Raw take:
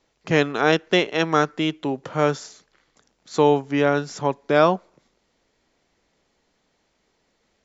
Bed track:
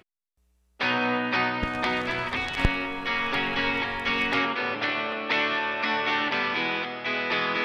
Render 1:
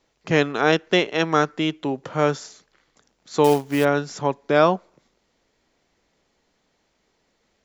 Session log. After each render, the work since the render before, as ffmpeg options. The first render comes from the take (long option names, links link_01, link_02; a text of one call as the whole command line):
ffmpeg -i in.wav -filter_complex "[0:a]asettb=1/sr,asplit=3[link_01][link_02][link_03];[link_01]atrim=end=3.444[link_04];[link_02]atrim=start=3.44:end=3.85,asetpts=PTS-STARTPTS,afade=type=in:duration=0.004:curve=qsin,afade=type=out:start_time=0.406:duration=0.004:curve=qsin,acrusher=bits=4:mode=log:mix=0:aa=0.000001[link_05];[link_03]atrim=start=3.846[link_06];[link_04][link_05]acrossfade=duration=0.004:curve1=hsin:curve2=qsin[link_07];[link_07][link_06]acrossfade=duration=0.004:curve1=qsin:curve2=hsin" out.wav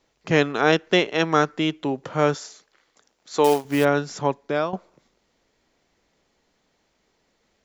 ffmpeg -i in.wav -filter_complex "[0:a]asettb=1/sr,asplit=3[link_01][link_02][link_03];[link_01]atrim=end=2.344[link_04];[link_02]atrim=start=2.34:end=3.65,asetpts=PTS-STARTPTS,afade=type=in:duration=0.004:curve=qsin,afade=type=out:start_time=1.306:duration=0.004:curve=qsin,bass=frequency=250:gain=-10,treble=frequency=4000:gain=1[link_05];[link_03]atrim=start=3.646[link_06];[link_04][link_05]acrossfade=duration=0.004:curve1=hsin:curve2=qsin[link_07];[link_07][link_06]acrossfade=duration=0.004:curve1=qsin:curve2=hsin,asplit=2[link_08][link_09];[link_08]atrim=end=4.73,asetpts=PTS-STARTPTS,afade=type=out:start_time=4.29:duration=0.44:silence=0.177828[link_10];[link_09]atrim=start=4.73,asetpts=PTS-STARTPTS,afade=type=in:duration=0.004:curve=hsin:silence=0.177828[link_11];[link_10][link_11]concat=n=2:v=0:a=1" out.wav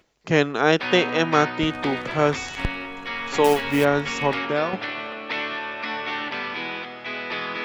ffmpeg -i in.wav -i bed.wav -filter_complex "[1:a]volume=-3dB[link_01];[0:a][link_01]amix=inputs=2:normalize=0" out.wav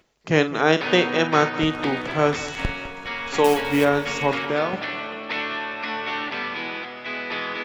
ffmpeg -i in.wav -filter_complex "[0:a]asplit=2[link_01][link_02];[link_02]adelay=45,volume=-12dB[link_03];[link_01][link_03]amix=inputs=2:normalize=0,aecho=1:1:204|408|612|816|1020:0.158|0.0824|0.0429|0.0223|0.0116" out.wav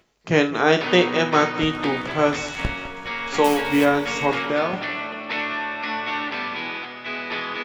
ffmpeg -i in.wav -af "aecho=1:1:17|76:0.422|0.15" out.wav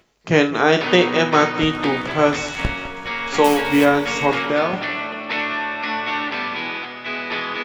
ffmpeg -i in.wav -af "volume=3dB,alimiter=limit=-1dB:level=0:latency=1" out.wav